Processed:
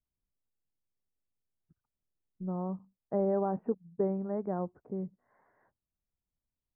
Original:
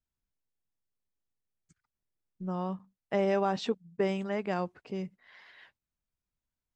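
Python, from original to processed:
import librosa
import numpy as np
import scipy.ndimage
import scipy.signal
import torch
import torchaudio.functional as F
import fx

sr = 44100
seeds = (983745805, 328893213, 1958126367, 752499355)

y = scipy.ndimage.gaussian_filter1d(x, 8.4, mode='constant')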